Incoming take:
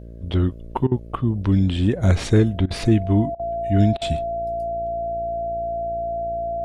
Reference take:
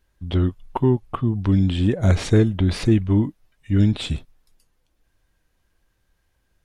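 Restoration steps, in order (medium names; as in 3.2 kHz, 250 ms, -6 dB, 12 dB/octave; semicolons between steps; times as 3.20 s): de-hum 57.3 Hz, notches 11; band-stop 680 Hz, Q 30; interpolate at 0.87/2.66/3.35/3.97 s, 44 ms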